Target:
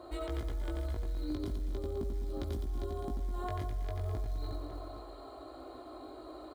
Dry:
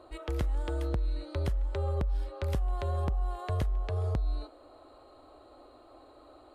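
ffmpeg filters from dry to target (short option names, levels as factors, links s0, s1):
-filter_complex "[0:a]asettb=1/sr,asplit=3[s0][s1][s2];[s0]atrim=end=1.204[s3];[s1]atrim=start=1.2:end=3.34,asetpts=PTS-STARTPTS,afade=t=in:d=0.004:c=qsin,afade=t=out:st=2.136:d=0.004:c=qsin,equalizer=f=250:t=o:w=1:g=11,equalizer=f=500:t=o:w=1:g=-6,equalizer=f=1000:t=o:w=1:g=-3,equalizer=f=2000:t=o:w=1:g=-11[s4];[s2]atrim=start=3.336[s5];[s3][s4]acrossfade=d=0.004:c1=hsin:c2=qsin[s6];[s6][s5]acrossfade=d=0.004:c1=qsin:c2=hsin,acompressor=threshold=0.0158:ratio=4,flanger=delay=17:depth=2.4:speed=0.41,aecho=1:1:90|207|359.1|556.8|813.9:0.631|0.398|0.251|0.158|0.1,acrusher=bits=8:mode=log:mix=0:aa=0.000001,aecho=1:1:2.9:0.36,alimiter=level_in=3.16:limit=0.0631:level=0:latency=1:release=83,volume=0.316,highpass=41,equalizer=f=300:w=1.2:g=2,bandreject=f=2700:w=7.2,volume=2"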